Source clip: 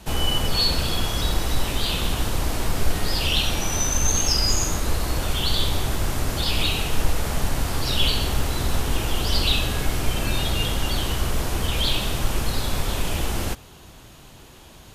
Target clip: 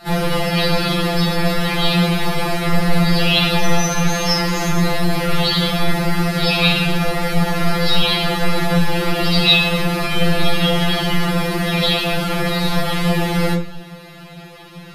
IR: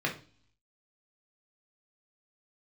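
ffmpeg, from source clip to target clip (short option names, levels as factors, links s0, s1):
-filter_complex "[0:a]acontrast=26[s0];[1:a]atrim=start_sample=2205,afade=t=out:st=0.32:d=0.01,atrim=end_sample=14553[s1];[s0][s1]afir=irnorm=-1:irlink=0,afftfilt=real='re*2.83*eq(mod(b,8),0)':imag='im*2.83*eq(mod(b,8),0)':win_size=2048:overlap=0.75"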